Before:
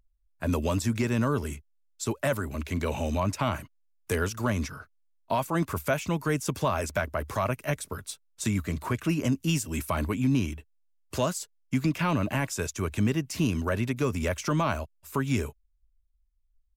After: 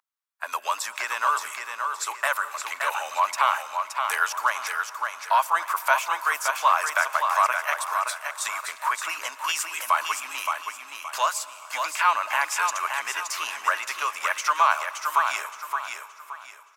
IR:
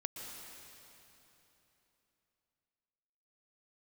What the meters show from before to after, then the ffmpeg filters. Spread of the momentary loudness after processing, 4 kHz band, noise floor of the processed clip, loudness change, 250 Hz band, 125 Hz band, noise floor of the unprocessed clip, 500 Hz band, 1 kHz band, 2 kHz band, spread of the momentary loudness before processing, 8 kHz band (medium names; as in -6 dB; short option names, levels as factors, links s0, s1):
9 LU, +7.0 dB, -46 dBFS, +4.0 dB, under -30 dB, under -40 dB, -69 dBFS, -5.0 dB, +11.5 dB, +10.0 dB, 9 LU, +6.0 dB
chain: -filter_complex "[0:a]highpass=f=870:w=0.5412,highpass=f=870:w=1.3066,equalizer=f=1100:t=o:w=1.4:g=8,dynaudnorm=f=130:g=9:m=1.41,aecho=1:1:571|1142|1713|2284:0.531|0.17|0.0544|0.0174,asplit=2[s0][s1];[1:a]atrim=start_sample=2205[s2];[s1][s2]afir=irnorm=-1:irlink=0,volume=0.282[s3];[s0][s3]amix=inputs=2:normalize=0"